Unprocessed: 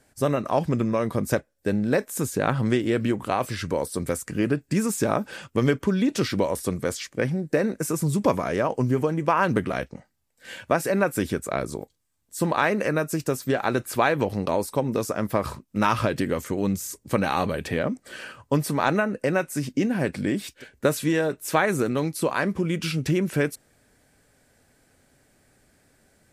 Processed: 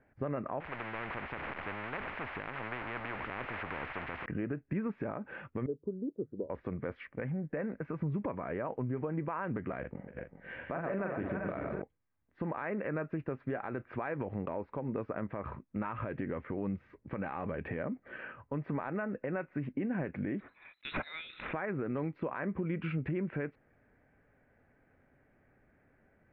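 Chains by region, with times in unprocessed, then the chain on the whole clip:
0.60–4.26 s: jump at every zero crossing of -29.5 dBFS + spectrum-flattening compressor 10:1
5.66–6.50 s: four-pole ladder low-pass 500 Hz, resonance 55% + hum notches 50/100/150 Hz + upward expansion, over -46 dBFS
7.04–7.99 s: peaking EQ 350 Hz -5.5 dB 0.4 oct + compression 2.5:1, threshold -28 dBFS
9.80–11.82 s: backward echo that repeats 200 ms, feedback 55%, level -6 dB + doubling 42 ms -5.5 dB + delay 276 ms -16.5 dB
20.40–21.53 s: treble shelf 2.1 kHz -12 dB + frequency inversion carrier 4 kHz + decay stretcher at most 39 dB/s
whole clip: steep low-pass 2.3 kHz 36 dB/octave; compression, threshold -25 dBFS; peak limiter -20.5 dBFS; trim -5 dB

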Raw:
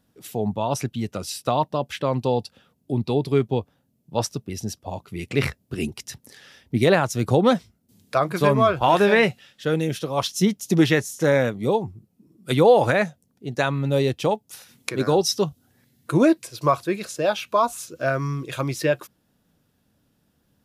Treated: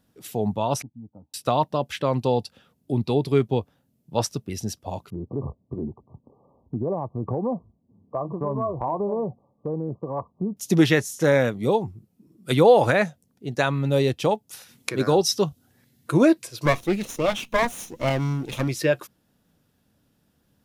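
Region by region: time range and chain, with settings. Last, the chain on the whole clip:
0.82–1.34 s: cascade formant filter u + static phaser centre 870 Hz, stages 4
5.10–10.57 s: brick-wall FIR low-pass 1.2 kHz + compression 2.5:1, threshold -26 dBFS
16.65–18.68 s: comb filter that takes the minimum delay 0.31 ms + peaking EQ 220 Hz +7.5 dB 0.61 oct
whole clip: none

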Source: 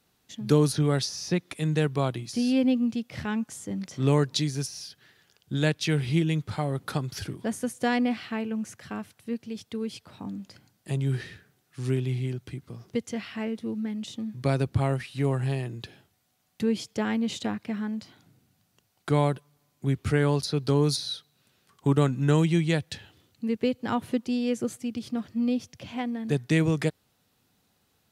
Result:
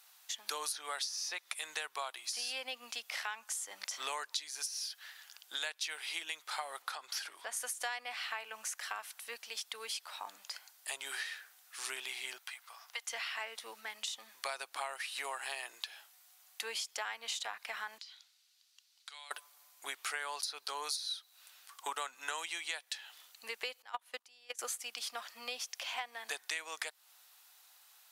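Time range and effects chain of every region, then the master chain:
6.82–7.57 s: treble shelf 7.3 kHz -9.5 dB + compression 2.5:1, threshold -35 dBFS
12.38–13.11 s: high-pass 700 Hz 24 dB/octave + peaking EQ 7.8 kHz -5 dB 2.1 oct
17.98–19.31 s: band-pass filter 4.2 kHz, Q 1.7 + compression 3:1, threshold -56 dBFS
23.82–24.59 s: level held to a coarse grid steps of 12 dB + upward expansion 2.5:1, over -35 dBFS
whole clip: high-pass 820 Hz 24 dB/octave; treble shelf 6.3 kHz +7 dB; compression 6:1, threshold -43 dBFS; trim +6.5 dB

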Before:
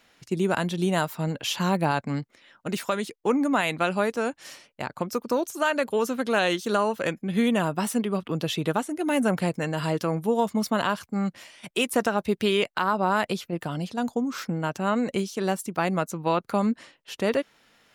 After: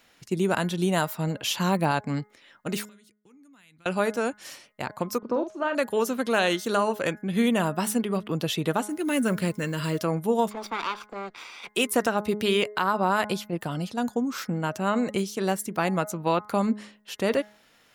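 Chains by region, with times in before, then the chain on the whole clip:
2.85–3.86 s: amplifier tone stack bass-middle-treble 6-0-2 + compression 3:1, threshold -56 dBFS
5.18–5.75 s: tape spacing loss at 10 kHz 35 dB + doubling 46 ms -8 dB
8.89–9.99 s: block-companded coder 7-bit + peaking EQ 770 Hz -15 dB 0.41 oct
10.51–11.69 s: comb filter that takes the minimum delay 0.84 ms + three-band isolator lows -24 dB, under 370 Hz, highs -20 dB, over 4.9 kHz + upward compressor, threshold -32 dBFS
whole clip: treble shelf 10 kHz +6 dB; de-hum 209.8 Hz, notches 10

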